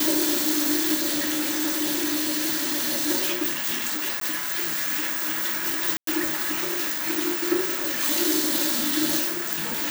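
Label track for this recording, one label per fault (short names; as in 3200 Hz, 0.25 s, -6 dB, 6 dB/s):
0.940000	3.100000	clipped -21 dBFS
4.200000	4.210000	gap 13 ms
5.970000	6.070000	gap 0.103 s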